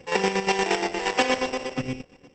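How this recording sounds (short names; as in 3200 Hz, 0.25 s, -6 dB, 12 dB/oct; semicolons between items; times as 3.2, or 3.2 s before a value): a buzz of ramps at a fixed pitch in blocks of 16 samples; chopped level 8.5 Hz, depth 60%, duty 40%; Opus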